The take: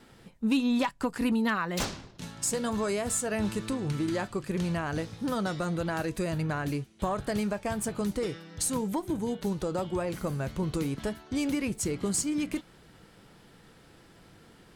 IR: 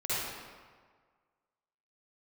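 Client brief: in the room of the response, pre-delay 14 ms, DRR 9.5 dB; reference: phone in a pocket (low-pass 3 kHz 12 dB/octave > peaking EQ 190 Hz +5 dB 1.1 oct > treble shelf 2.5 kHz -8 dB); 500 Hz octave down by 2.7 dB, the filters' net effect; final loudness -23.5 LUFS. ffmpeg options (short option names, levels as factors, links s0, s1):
-filter_complex "[0:a]equalizer=f=500:t=o:g=-4,asplit=2[s0][s1];[1:a]atrim=start_sample=2205,adelay=14[s2];[s1][s2]afir=irnorm=-1:irlink=0,volume=0.133[s3];[s0][s3]amix=inputs=2:normalize=0,lowpass=3000,equalizer=f=190:t=o:w=1.1:g=5,highshelf=f=2500:g=-8,volume=2"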